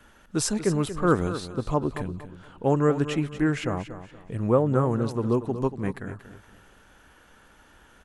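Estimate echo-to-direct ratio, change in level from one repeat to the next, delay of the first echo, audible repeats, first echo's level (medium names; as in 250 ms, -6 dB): -11.5 dB, -10.0 dB, 235 ms, 3, -12.0 dB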